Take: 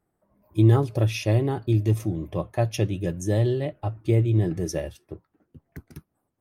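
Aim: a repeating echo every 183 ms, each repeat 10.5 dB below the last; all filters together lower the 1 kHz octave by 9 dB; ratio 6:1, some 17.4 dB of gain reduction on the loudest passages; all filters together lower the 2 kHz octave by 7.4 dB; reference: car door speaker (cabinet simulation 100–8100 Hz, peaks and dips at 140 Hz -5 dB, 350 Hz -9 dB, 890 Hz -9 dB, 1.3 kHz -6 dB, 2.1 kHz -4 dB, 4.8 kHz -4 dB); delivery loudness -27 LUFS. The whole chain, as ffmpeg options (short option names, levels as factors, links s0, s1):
-af "equalizer=f=1000:t=o:g=-5.5,equalizer=f=2000:t=o:g=-6,acompressor=threshold=0.0251:ratio=6,highpass=100,equalizer=f=140:t=q:w=4:g=-5,equalizer=f=350:t=q:w=4:g=-9,equalizer=f=890:t=q:w=4:g=-9,equalizer=f=1300:t=q:w=4:g=-6,equalizer=f=2100:t=q:w=4:g=-4,equalizer=f=4800:t=q:w=4:g=-4,lowpass=f=8100:w=0.5412,lowpass=f=8100:w=1.3066,aecho=1:1:183|366|549:0.299|0.0896|0.0269,volume=4.73"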